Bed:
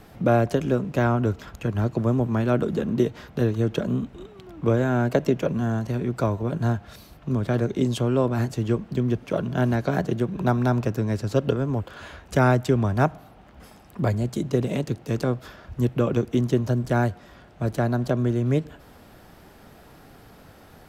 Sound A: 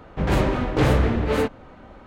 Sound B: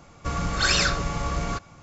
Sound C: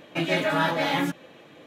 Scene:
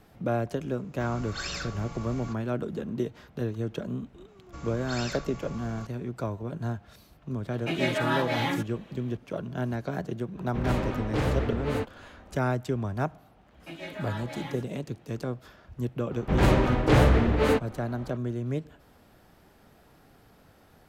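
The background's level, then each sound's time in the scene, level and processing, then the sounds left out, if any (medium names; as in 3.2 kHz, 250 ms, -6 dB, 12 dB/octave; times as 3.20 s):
bed -8.5 dB
0.75 s: add B -13.5 dB
4.28 s: add B -15.5 dB
7.51 s: add C -4 dB
10.37 s: add A -8.5 dB
13.51 s: add C -15.5 dB
16.11 s: add A -1 dB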